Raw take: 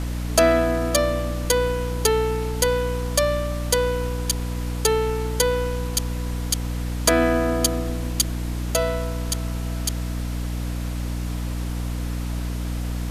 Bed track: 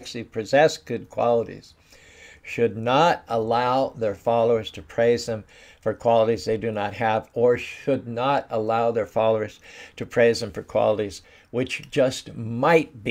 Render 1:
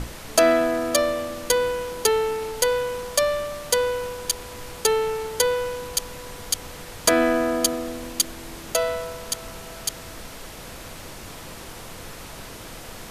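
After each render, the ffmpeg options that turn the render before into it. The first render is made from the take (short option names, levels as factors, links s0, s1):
-af "bandreject=f=60:t=h:w=6,bandreject=f=120:t=h:w=6,bandreject=f=180:t=h:w=6,bandreject=f=240:t=h:w=6,bandreject=f=300:t=h:w=6,bandreject=f=360:t=h:w=6"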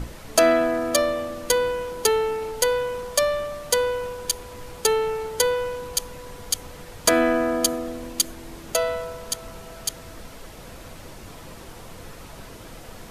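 -af "afftdn=nr=6:nf=-39"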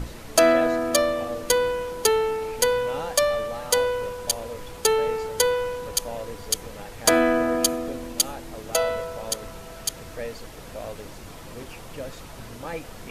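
-filter_complex "[1:a]volume=0.15[s0];[0:a][s0]amix=inputs=2:normalize=0"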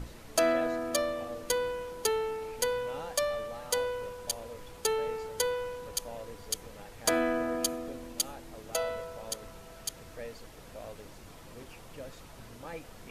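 -af "volume=0.355"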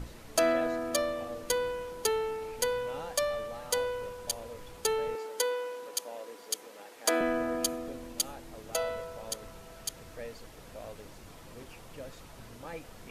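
-filter_complex "[0:a]asettb=1/sr,asplit=3[s0][s1][s2];[s0]atrim=end=5.154[s3];[s1]atrim=start=5.15:end=7.21,asetpts=PTS-STARTPTS,afade=t=in:d=0.004:c=qsin,afade=t=out:st=2.056:d=0.004:c=qsin,highpass=f=270:w=0.5412,highpass=f=270:w=1.3066[s4];[s2]atrim=start=7.206[s5];[s3][s4]acrossfade=d=0.004:c1=hsin:c2=qsin[s6];[s6][s5]acrossfade=d=0.004:c1=qsin:c2=hsin"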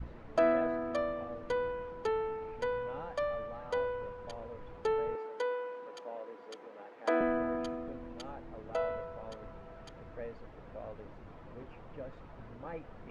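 -af "lowpass=1600,adynamicequalizer=threshold=0.00631:dfrequency=470:dqfactor=0.88:tfrequency=470:tqfactor=0.88:attack=5:release=100:ratio=0.375:range=2:mode=cutabove:tftype=bell"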